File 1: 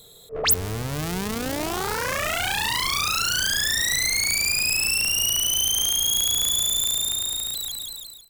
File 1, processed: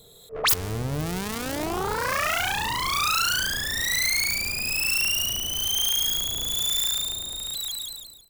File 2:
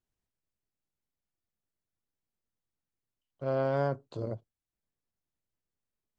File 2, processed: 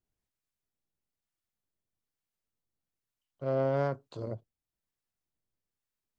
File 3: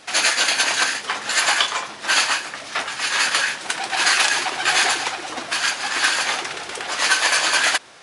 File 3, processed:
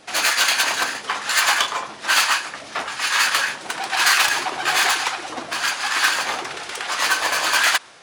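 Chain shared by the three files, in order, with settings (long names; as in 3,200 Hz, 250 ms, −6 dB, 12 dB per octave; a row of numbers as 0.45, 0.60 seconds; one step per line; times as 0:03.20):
phase distortion by the signal itself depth 0.068 ms
dynamic equaliser 1,100 Hz, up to +4 dB, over −34 dBFS, Q 2
two-band tremolo in antiphase 1.1 Hz, depth 50%, crossover 830 Hz
level +1.5 dB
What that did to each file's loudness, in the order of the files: −2.5, 0.0, 0.0 LU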